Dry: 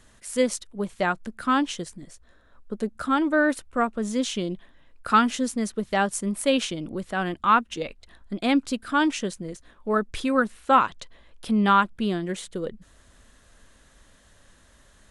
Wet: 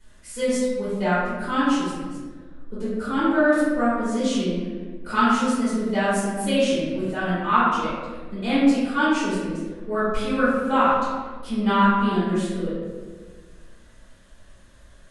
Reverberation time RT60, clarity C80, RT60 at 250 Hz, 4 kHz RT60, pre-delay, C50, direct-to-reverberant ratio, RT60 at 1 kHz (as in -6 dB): 1.5 s, 0.5 dB, 1.9 s, 0.85 s, 3 ms, -2.5 dB, -13.0 dB, 1.2 s